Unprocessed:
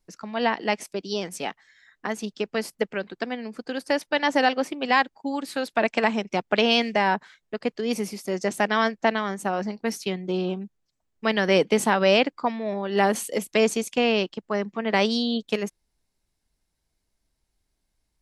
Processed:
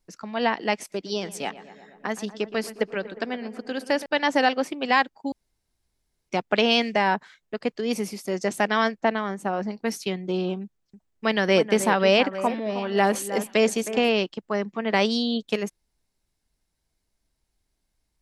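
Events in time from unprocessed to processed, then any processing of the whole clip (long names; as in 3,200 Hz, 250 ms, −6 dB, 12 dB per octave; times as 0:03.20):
0:00.77–0:04.06: feedback echo with a low-pass in the loop 119 ms, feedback 75%, low-pass 2,500 Hz, level −14.5 dB
0:05.32–0:06.29: fill with room tone
0:09.00–0:09.71: high-shelf EQ 2,700 Hz −8 dB
0:10.62–0:14.24: delay that swaps between a low-pass and a high-pass 314 ms, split 2,100 Hz, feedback 52%, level −11.5 dB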